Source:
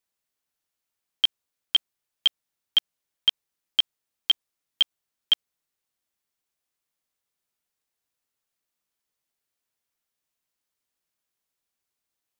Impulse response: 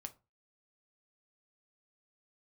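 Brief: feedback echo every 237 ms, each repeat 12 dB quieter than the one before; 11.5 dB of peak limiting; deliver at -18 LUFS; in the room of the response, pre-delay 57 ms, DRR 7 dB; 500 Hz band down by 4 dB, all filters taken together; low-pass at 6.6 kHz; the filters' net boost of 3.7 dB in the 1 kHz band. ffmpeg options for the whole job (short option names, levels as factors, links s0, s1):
-filter_complex "[0:a]lowpass=6600,equalizer=f=500:t=o:g=-7.5,equalizer=f=1000:t=o:g=6.5,alimiter=limit=0.0841:level=0:latency=1,aecho=1:1:237|474|711:0.251|0.0628|0.0157,asplit=2[s0][s1];[1:a]atrim=start_sample=2205,adelay=57[s2];[s1][s2]afir=irnorm=-1:irlink=0,volume=0.794[s3];[s0][s3]amix=inputs=2:normalize=0,volume=7.08"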